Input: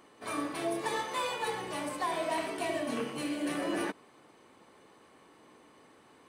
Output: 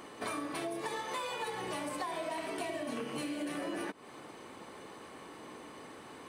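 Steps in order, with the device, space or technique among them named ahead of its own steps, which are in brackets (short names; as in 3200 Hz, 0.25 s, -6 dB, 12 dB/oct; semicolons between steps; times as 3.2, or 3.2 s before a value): serial compression, leveller first (compressor 1.5:1, threshold -41 dBFS, peak gain reduction 5 dB; compressor 6:1, threshold -45 dBFS, peak gain reduction 12 dB); gain +9.5 dB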